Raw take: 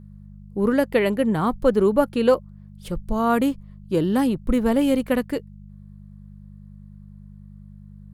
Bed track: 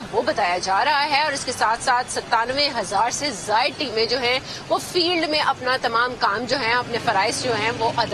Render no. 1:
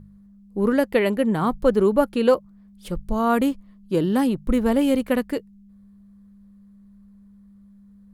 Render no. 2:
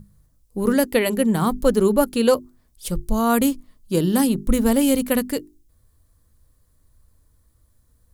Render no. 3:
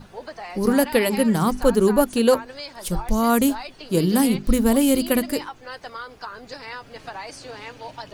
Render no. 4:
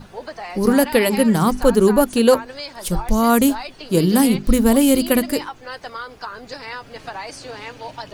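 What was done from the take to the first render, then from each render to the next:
de-hum 50 Hz, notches 3
tone controls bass +5 dB, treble +15 dB; notches 50/100/150/200/250/300/350/400 Hz
add bed track -15.5 dB
gain +3.5 dB; limiter -2 dBFS, peak gain reduction 2 dB

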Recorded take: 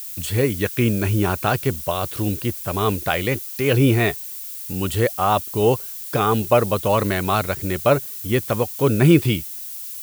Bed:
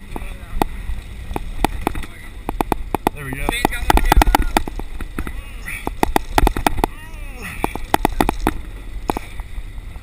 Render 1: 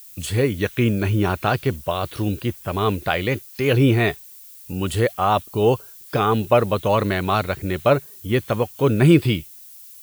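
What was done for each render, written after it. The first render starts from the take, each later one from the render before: noise print and reduce 10 dB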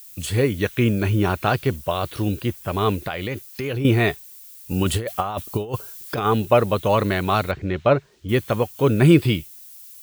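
3.07–3.85 compressor, threshold -23 dBFS; 4.71–6.26 negative-ratio compressor -22 dBFS, ratio -0.5; 7.51–8.29 air absorption 160 m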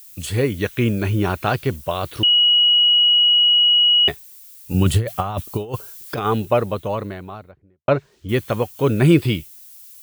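2.23–4.08 bleep 2910 Hz -11 dBFS; 4.74–5.41 bell 120 Hz +10 dB 1.2 oct; 6.11–7.88 studio fade out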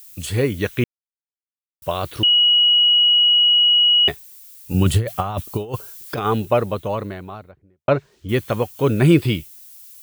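0.84–1.82 mute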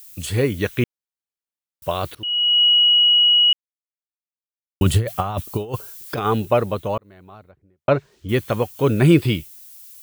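2.15–2.63 fade in linear, from -23.5 dB; 3.53–4.81 mute; 6.98–7.89 fade in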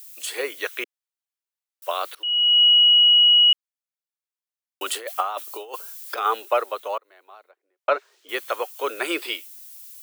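Bessel high-pass 700 Hz, order 8; dynamic EQ 1300 Hz, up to +6 dB, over -45 dBFS, Q 5.7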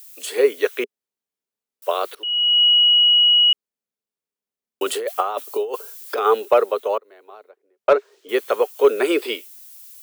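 small resonant body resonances 230/410 Hz, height 15 dB, ringing for 30 ms; hard clip -5 dBFS, distortion -32 dB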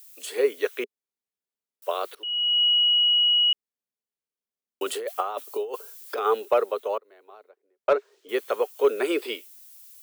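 gain -6 dB

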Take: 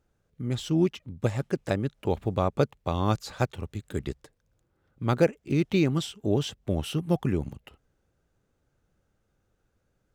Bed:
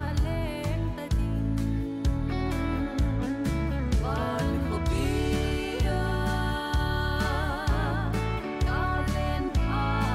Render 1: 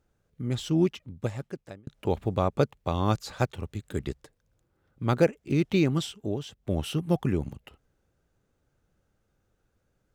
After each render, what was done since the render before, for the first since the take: 0.89–1.87 fade out; 6.13–6.75 dip -8.5 dB, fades 0.25 s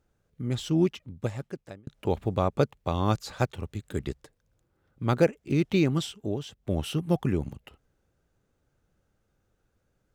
nothing audible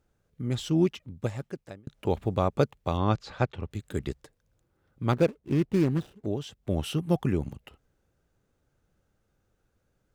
2.97–3.71 LPF 3800 Hz; 5.12–6.26 median filter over 41 samples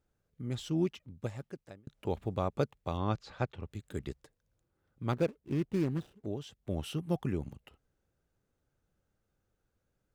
gain -7 dB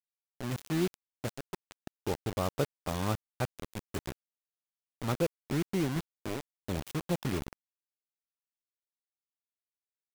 bit-crush 6-bit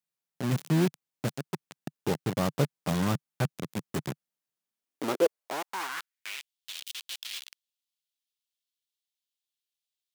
in parallel at -4 dB: wrapped overs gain 28.5 dB; on the sum: high-pass sweep 150 Hz -> 3300 Hz, 4.56–6.54

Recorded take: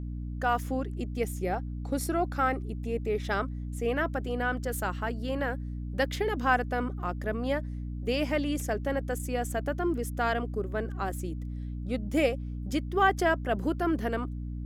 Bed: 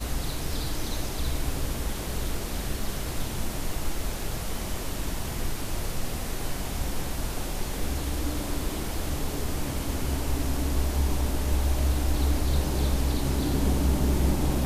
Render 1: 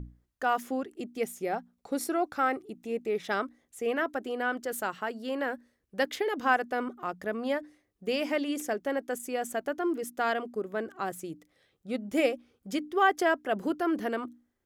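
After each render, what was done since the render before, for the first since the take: notches 60/120/180/240/300 Hz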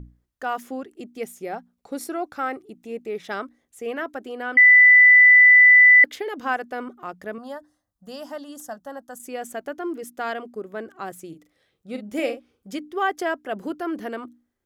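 4.57–6.04 bleep 1990 Hz -8 dBFS; 7.38–9.2 fixed phaser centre 960 Hz, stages 4; 11.28–12.68 doubler 43 ms -8 dB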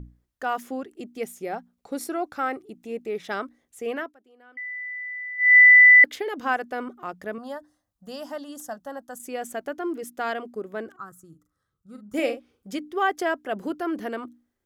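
3.96–5.57 dip -23 dB, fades 0.19 s; 10.96–12.14 EQ curve 110 Hz 0 dB, 350 Hz -14 dB, 700 Hz -20 dB, 1300 Hz +2 dB, 2300 Hz -29 dB, 6800 Hz -8 dB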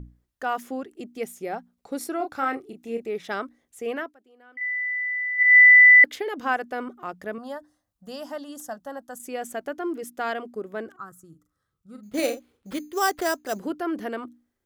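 2.17–3.05 doubler 30 ms -5.5 dB; 4.61–5.43 bell 2800 Hz +8.5 dB 1.7 oct; 12.03–13.59 sample-rate reducer 6600 Hz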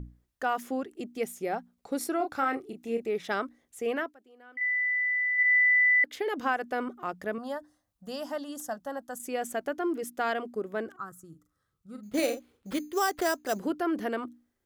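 compressor 4:1, threshold -23 dBFS, peak gain reduction 10.5 dB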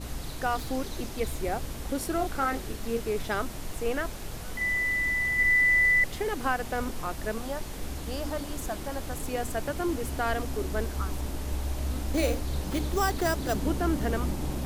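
add bed -6.5 dB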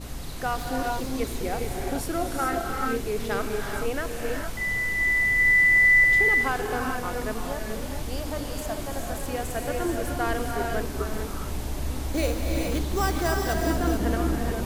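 non-linear reverb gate 0.46 s rising, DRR 0.5 dB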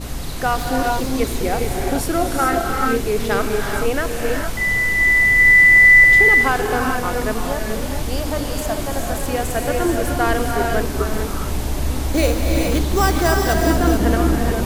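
gain +8.5 dB

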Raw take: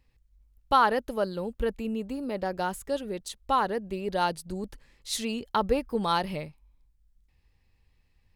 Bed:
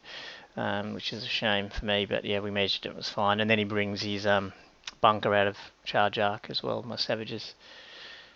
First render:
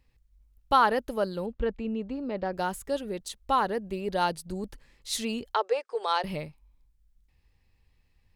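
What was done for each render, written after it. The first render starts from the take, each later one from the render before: 1.46–2.53 air absorption 160 m; 5.54–6.24 Chebyshev band-pass 390–8600 Hz, order 5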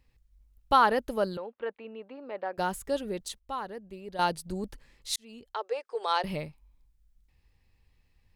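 1.37–2.58 BPF 570–2600 Hz; 3.39–4.19 gain -10.5 dB; 5.16–6.2 fade in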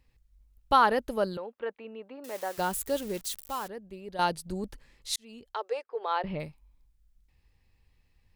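2.24–3.68 switching spikes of -31.5 dBFS; 5.83–6.4 air absorption 340 m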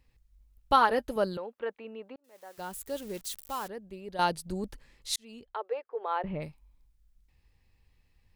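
0.76–1.16 notch comb 200 Hz; 2.16–3.72 fade in; 5.45–6.42 air absorption 380 m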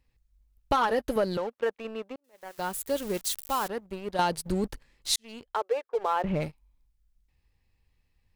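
sample leveller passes 2; compressor 6:1, threshold -22 dBFS, peak gain reduction 8.5 dB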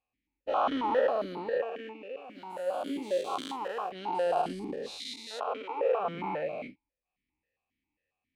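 spectral dilation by 0.48 s; vowel sequencer 7.4 Hz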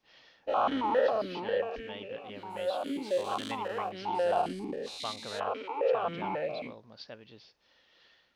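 add bed -17 dB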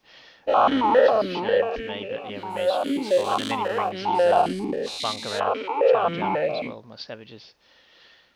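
gain +9.5 dB

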